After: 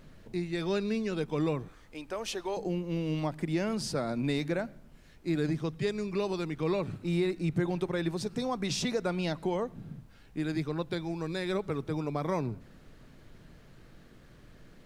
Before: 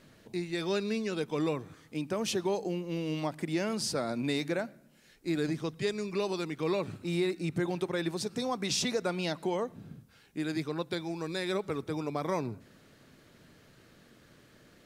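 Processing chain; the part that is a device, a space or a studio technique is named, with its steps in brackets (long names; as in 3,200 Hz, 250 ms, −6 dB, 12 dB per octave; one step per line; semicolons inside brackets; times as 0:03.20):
0:01.68–0:02.57: high-pass filter 490 Hz 12 dB per octave
car interior (parametric band 140 Hz +5 dB 0.99 octaves; high-shelf EQ 3,900 Hz −5.5 dB; brown noise bed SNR 22 dB)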